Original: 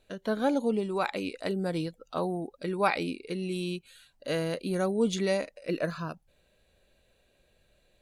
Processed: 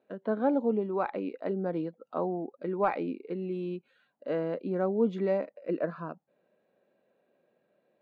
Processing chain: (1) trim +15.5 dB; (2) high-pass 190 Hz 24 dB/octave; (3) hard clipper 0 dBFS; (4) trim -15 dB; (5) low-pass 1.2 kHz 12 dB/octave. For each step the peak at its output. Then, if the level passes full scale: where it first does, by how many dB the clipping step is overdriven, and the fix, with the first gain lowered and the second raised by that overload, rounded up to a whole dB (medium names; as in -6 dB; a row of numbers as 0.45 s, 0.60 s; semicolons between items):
+3.5 dBFS, +4.0 dBFS, 0.0 dBFS, -15.0 dBFS, -15.0 dBFS; step 1, 4.0 dB; step 1 +11.5 dB, step 4 -11 dB